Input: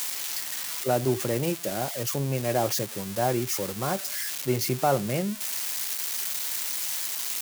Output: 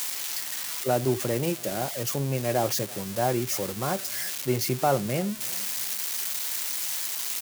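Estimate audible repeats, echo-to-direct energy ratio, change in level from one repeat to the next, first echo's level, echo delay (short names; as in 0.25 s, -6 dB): 2, -22.5 dB, -8.5 dB, -23.0 dB, 0.337 s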